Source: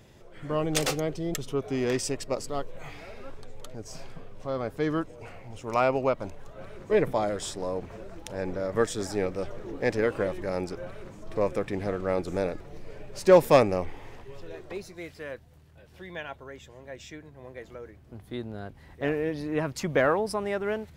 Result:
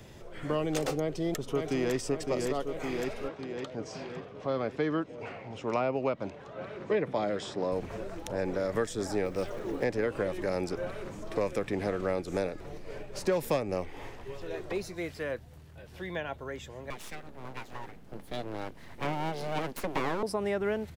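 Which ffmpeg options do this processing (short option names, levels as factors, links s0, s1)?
-filter_complex "[0:a]asplit=2[s0][s1];[s1]afade=t=in:st=0.99:d=0.01,afade=t=out:st=1.96:d=0.01,aecho=0:1:560|1120|1680|2240|2800|3360|3920:0.562341|0.309288|0.170108|0.0935595|0.0514577|0.0283018|0.015566[s2];[s0][s2]amix=inputs=2:normalize=0,asettb=1/sr,asplit=3[s3][s4][s5];[s3]atrim=end=3.284[s6];[s4]atrim=start=3.28:end=7.72,asetpts=PTS-STARTPTS,afade=t=in:d=0.004:c=qsin,afade=t=out:st=4.436:d=0.004:c=qsin,highpass=150,lowpass=4200[s7];[s5]atrim=start=7.716[s8];[s6][s7]acrossfade=d=0.004:c1=hsin:c2=qsin[s9];[s9][s8]acrossfade=d=0.004:c1=qsin:c2=hsin,asettb=1/sr,asplit=3[s10][s11][s12];[s10]atrim=end=9.254[s13];[s11]atrim=start=9.25:end=9.84,asetpts=PTS-STARTPTS,afade=t=in:d=0.004:c=qsin,afade=t=out:st=0.586:d=0.004:c=qsin,acrusher=bits=9:mode=log:mix=0:aa=0.000001[s14];[s12]atrim=start=9.836[s15];[s13][s14]acrossfade=d=0.004:c1=hsin:c2=qsin[s16];[s16][s15]acrossfade=d=0.004:c1=qsin:c2=hsin,asettb=1/sr,asplit=3[s17][s18][s19];[s17]atrim=end=12.144[s20];[s18]atrim=start=12.14:end=14.41,asetpts=PTS-STARTPTS,afade=t=in:d=0.004:c=qsin,afade=t=out:st=2.266:d=0.004:c=qsin,tremolo=f=3.7:d=0.42[s21];[s19]atrim=start=14.406[s22];[s20][s21]acrossfade=d=0.004:c1=hsin:c2=qsin[s23];[s23][s22]acrossfade=d=0.004:c1=qsin:c2=hsin,asettb=1/sr,asplit=3[s24][s25][s26];[s24]atrim=end=16.904[s27];[s25]atrim=start=16.9:end=20.23,asetpts=PTS-STARTPTS,afade=t=in:d=0.004:c=qsin,afade=t=out:st=3.326:d=0.004:c=qsin,aeval=exprs='abs(val(0))':c=same[s28];[s26]atrim=start=20.226[s29];[s27][s28]acrossfade=d=0.004:c1=hsin:c2=qsin[s30];[s30][s29]acrossfade=d=0.004:c1=qsin:c2=hsin,acrossover=split=200|750|1500[s31][s32][s33][s34];[s31]acompressor=threshold=0.00562:ratio=4[s35];[s32]acompressor=threshold=0.02:ratio=4[s36];[s33]acompressor=threshold=0.00398:ratio=4[s37];[s34]acompressor=threshold=0.00501:ratio=4[s38];[s35][s36][s37][s38]amix=inputs=4:normalize=0,volume=1.68"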